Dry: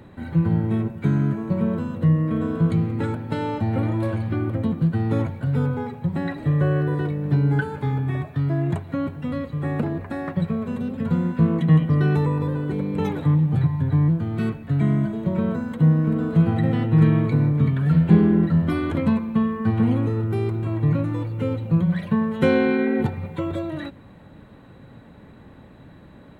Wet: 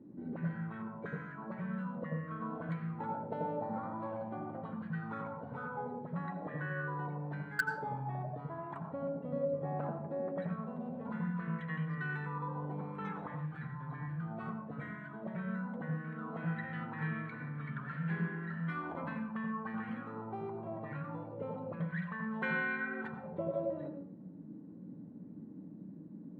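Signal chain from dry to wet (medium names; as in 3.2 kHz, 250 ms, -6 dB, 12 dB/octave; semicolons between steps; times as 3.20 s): peaking EQ 190 Hz +10.5 dB 0.23 oct; auto-wah 270–1700 Hz, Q 4.3, up, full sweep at -15 dBFS; 3.56–4.02 s: peaking EQ 2.7 kHz -15 dB 0.42 oct; in parallel at -10 dB: bit crusher 4-bit; on the sum: de-hum 69.51 Hz, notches 3; on a send at -5 dB: reverberation RT60 0.45 s, pre-delay 77 ms; on the sum: trim -2 dB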